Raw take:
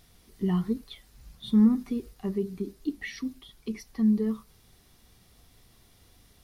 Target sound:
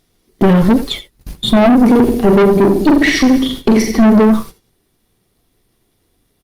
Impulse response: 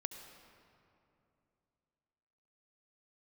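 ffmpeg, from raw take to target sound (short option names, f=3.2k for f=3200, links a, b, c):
-filter_complex "[0:a]equalizer=f=360:w=1.4:g=7.5,asplit=3[a][b][c];[a]afade=t=out:st=1.81:d=0.02[d];[b]aecho=1:1:40|86|138.9|199.7|269.7:0.631|0.398|0.251|0.158|0.1,afade=t=in:st=1.81:d=0.02,afade=t=out:st=4.19:d=0.02[e];[c]afade=t=in:st=4.19:d=0.02[f];[d][e][f]amix=inputs=3:normalize=0,aeval=exprs='0.133*(abs(mod(val(0)/0.133+3,4)-2)-1)':c=same,aeval=exprs='(tanh(31.6*val(0)+0.6)-tanh(0.6))/31.6':c=same,agate=range=-26dB:threshold=-50dB:ratio=16:detection=peak,equalizer=f=62:w=3.9:g=-11[g];[1:a]atrim=start_sample=2205,atrim=end_sample=3969[h];[g][h]afir=irnorm=-1:irlink=0,alimiter=level_in=30.5dB:limit=-1dB:release=50:level=0:latency=1,volume=-1dB" -ar 48000 -c:a libopus -b:a 48k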